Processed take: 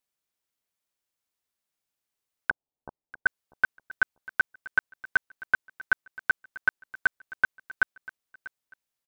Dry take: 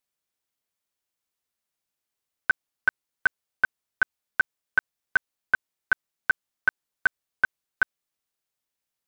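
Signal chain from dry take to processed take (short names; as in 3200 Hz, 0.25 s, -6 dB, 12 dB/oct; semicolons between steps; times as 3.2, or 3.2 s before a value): 2.5–3.26 steep low-pass 940 Hz 48 dB/oct; on a send: feedback echo 0.643 s, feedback 26%, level -19 dB; on the sum: gain -1 dB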